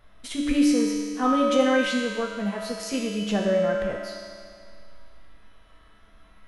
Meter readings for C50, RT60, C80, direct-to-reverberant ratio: 0.0 dB, 2.1 s, 2.0 dB, −3.0 dB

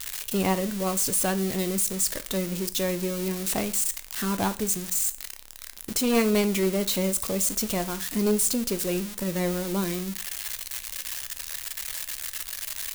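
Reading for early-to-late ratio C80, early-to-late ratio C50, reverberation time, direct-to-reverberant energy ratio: 22.5 dB, 17.0 dB, 0.40 s, 11.0 dB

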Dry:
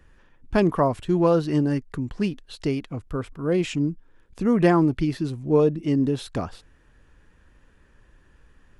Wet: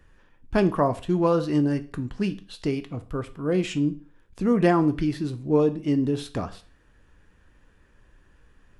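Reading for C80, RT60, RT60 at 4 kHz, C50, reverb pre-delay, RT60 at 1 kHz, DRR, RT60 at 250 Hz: 21.5 dB, 0.40 s, 0.35 s, 16.5 dB, 10 ms, 0.40 s, 9.5 dB, 0.40 s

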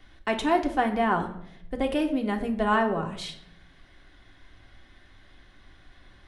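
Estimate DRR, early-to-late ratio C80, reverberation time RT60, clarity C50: 2.5 dB, 13.5 dB, 0.70 s, 11.0 dB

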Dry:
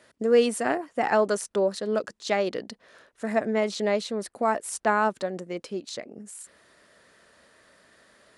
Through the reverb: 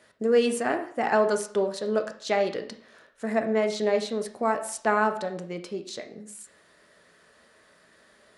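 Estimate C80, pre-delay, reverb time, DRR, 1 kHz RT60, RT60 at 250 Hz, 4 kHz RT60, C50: 15.0 dB, 3 ms, 0.55 s, 5.5 dB, 0.60 s, 0.60 s, 0.50 s, 11.0 dB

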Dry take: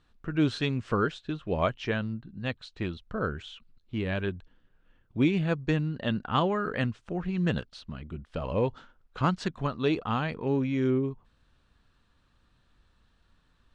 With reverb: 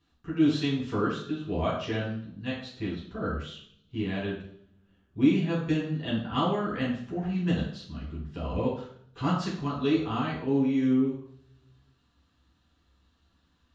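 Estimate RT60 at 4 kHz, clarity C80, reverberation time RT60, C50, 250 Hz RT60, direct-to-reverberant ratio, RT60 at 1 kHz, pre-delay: 0.70 s, 7.5 dB, 0.60 s, 3.5 dB, 0.70 s, −7.0 dB, 0.55 s, 3 ms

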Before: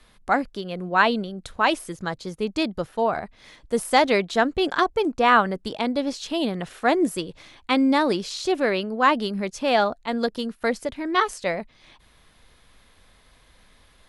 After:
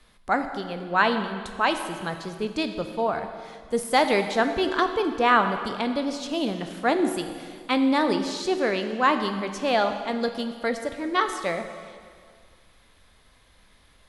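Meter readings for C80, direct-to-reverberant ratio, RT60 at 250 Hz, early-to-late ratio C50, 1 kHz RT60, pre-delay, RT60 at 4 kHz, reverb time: 9.5 dB, 7.0 dB, 1.9 s, 8.5 dB, 2.0 s, 6 ms, 1.9 s, 2.0 s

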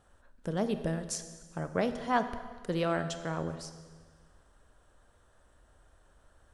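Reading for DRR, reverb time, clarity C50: 9.5 dB, 1.5 s, 10.5 dB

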